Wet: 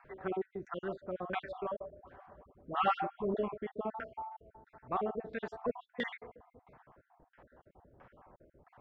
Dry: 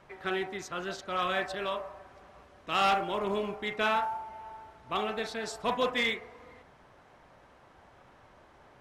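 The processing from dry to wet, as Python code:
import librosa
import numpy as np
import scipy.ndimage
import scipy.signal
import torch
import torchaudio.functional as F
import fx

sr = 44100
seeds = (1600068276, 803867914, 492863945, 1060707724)

y = fx.spec_dropout(x, sr, seeds[0], share_pct=47)
y = fx.filter_lfo_lowpass(y, sr, shape='saw_down', hz=1.5, low_hz=370.0, high_hz=2100.0, q=0.88)
y = fx.dispersion(y, sr, late='highs', ms=79.0, hz=900.0, at=(1.9, 3.37))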